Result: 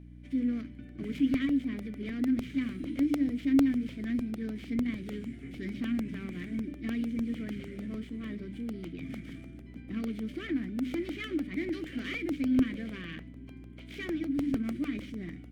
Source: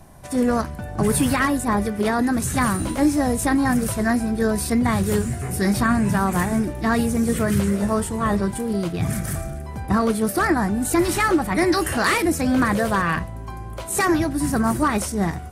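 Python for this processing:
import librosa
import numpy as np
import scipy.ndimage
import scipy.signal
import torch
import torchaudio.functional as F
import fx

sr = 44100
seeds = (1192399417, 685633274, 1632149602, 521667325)

p1 = fx.tracing_dist(x, sr, depth_ms=0.29)
p2 = fx.peak_eq(p1, sr, hz=6200.0, db=-3.0, octaves=2.3)
p3 = fx.hum_notches(p2, sr, base_hz=50, count=6)
p4 = np.clip(p3, -10.0 ** (-25.5 / 20.0), 10.0 ** (-25.5 / 20.0))
p5 = p3 + (p4 * librosa.db_to_amplitude(-5.0))
p6 = fx.vowel_filter(p5, sr, vowel='i')
p7 = fx.dmg_buzz(p6, sr, base_hz=60.0, harmonics=5, level_db=-45.0, tilt_db=-4, odd_only=False)
p8 = fx.buffer_crackle(p7, sr, first_s=0.89, period_s=0.15, block=64, kind='repeat')
y = p8 * librosa.db_to_amplitude(-4.0)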